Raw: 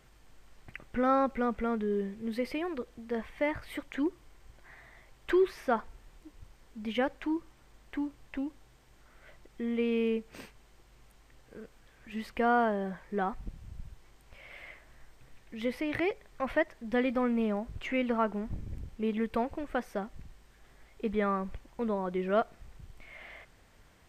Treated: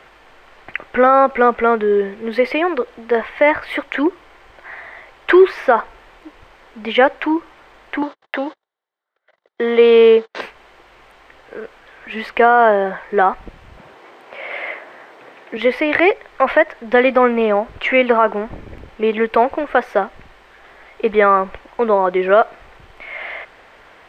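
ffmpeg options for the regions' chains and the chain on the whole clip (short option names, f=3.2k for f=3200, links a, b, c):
-filter_complex "[0:a]asettb=1/sr,asplit=3[a][b][c];[a]atrim=end=8.024[d];[b]atrim=start=8.02:end=10.41,asetpts=PTS-STARTPTS,afade=t=in:d=0.004:c=qsin,afade=t=out:st=2.386:d=0.004:c=qsin,agate=range=-44dB:threshold=-50dB:ratio=16:release=100:detection=peak,acontrast=36,highpass=240,equalizer=f=280:t=q:w=4:g=-8,equalizer=f=2.5k:t=q:w=4:g=-9,equalizer=f=3.8k:t=q:w=4:g=6,lowpass=f=6.7k:w=0.5412,lowpass=f=6.7k:w=1.3066[e];[c]atrim=start=10.406[f];[d][e]acrossfade=d=0.004:c1=hsin:c2=qsin[g];[g][f]acrossfade=d=0.004:c1=qsin:c2=hsin,asettb=1/sr,asplit=3[h][i][j];[h]atrim=end=13.774[k];[i]atrim=start=13.77:end=15.57,asetpts=PTS-STARTPTS,afade=t=in:d=0.004:c=qsin,afade=t=out:st=1.796:d=0.004:c=qsin,highpass=200,equalizer=f=320:w=0.34:g=7.5[l];[j]atrim=start=15.566[m];[k][l]acrossfade=d=0.004:c1=hsin:c2=qsin[n];[n][m]acrossfade=d=0.004:c1=qsin:c2=hsin,acrossover=split=370 3400:gain=0.112 1 0.112[o][p][q];[o][p][q]amix=inputs=3:normalize=0,alimiter=level_in=22dB:limit=-1dB:release=50:level=0:latency=1,volume=-1dB"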